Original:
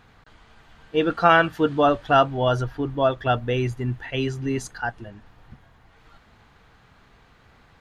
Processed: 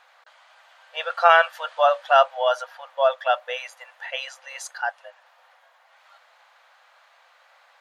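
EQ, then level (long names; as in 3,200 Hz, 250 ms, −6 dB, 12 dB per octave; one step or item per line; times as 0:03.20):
linear-phase brick-wall high-pass 500 Hz
+1.5 dB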